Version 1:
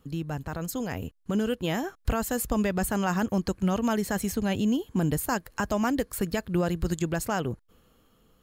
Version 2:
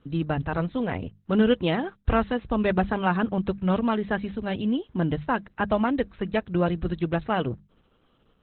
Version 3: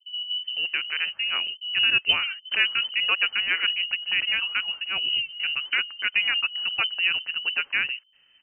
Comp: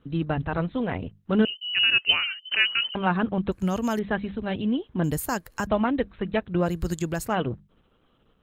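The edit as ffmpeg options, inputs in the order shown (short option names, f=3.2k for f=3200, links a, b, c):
-filter_complex "[0:a]asplit=3[a][b][c];[1:a]asplit=5[d][e][f][g][h];[d]atrim=end=1.452[i];[2:a]atrim=start=1.448:end=2.952[j];[e]atrim=start=2.948:end=3.522[k];[a]atrim=start=3.518:end=3.992[l];[f]atrim=start=3.988:end=5.042[m];[b]atrim=start=5.038:end=5.672[n];[g]atrim=start=5.668:end=6.75[o];[c]atrim=start=6.59:end=7.36[p];[h]atrim=start=7.2[q];[i][j]acrossfade=d=0.004:c1=hsin:c2=hsin[r];[r][k]acrossfade=d=0.004:c1=hsin:c2=hsin[s];[s][l]acrossfade=d=0.004:c1=hsin:c2=hsin[t];[t][m]acrossfade=d=0.004:c1=hsin:c2=hsin[u];[u][n]acrossfade=d=0.004:c1=hsin:c2=hsin[v];[v][o]acrossfade=d=0.004:c1=hsin:c2=hsin[w];[w][p]acrossfade=d=0.16:c1=tri:c2=tri[x];[x][q]acrossfade=d=0.16:c1=tri:c2=tri"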